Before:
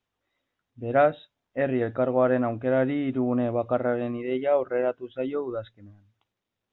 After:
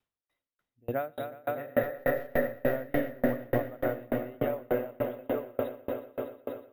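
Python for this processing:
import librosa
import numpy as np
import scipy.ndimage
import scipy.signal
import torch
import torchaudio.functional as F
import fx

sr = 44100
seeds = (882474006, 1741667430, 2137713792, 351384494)

p1 = fx.halfwave_gain(x, sr, db=-12.0, at=(1.83, 2.44))
p2 = fx.spec_repair(p1, sr, seeds[0], start_s=1.66, length_s=0.84, low_hz=300.0, high_hz=2100.0, source='before')
p3 = p2 + fx.echo_swell(p2, sr, ms=121, loudest=5, wet_db=-9, dry=0)
p4 = np.repeat(p3[::3], 3)[:len(p3)]
y = fx.tremolo_decay(p4, sr, direction='decaying', hz=3.4, depth_db=33)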